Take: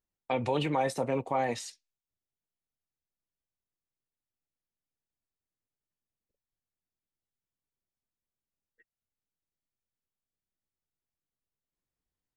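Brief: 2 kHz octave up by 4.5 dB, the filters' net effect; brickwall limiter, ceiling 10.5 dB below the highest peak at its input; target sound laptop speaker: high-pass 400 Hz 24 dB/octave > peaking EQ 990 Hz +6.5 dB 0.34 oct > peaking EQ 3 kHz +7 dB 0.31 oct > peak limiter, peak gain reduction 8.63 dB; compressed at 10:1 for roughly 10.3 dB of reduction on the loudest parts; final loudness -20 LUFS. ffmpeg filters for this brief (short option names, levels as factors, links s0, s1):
-af "equalizer=f=2000:t=o:g=4,acompressor=threshold=0.02:ratio=10,alimiter=level_in=2.51:limit=0.0631:level=0:latency=1,volume=0.398,highpass=f=400:w=0.5412,highpass=f=400:w=1.3066,equalizer=f=990:t=o:w=0.34:g=6.5,equalizer=f=3000:t=o:w=0.31:g=7,volume=22.4,alimiter=limit=0.316:level=0:latency=1"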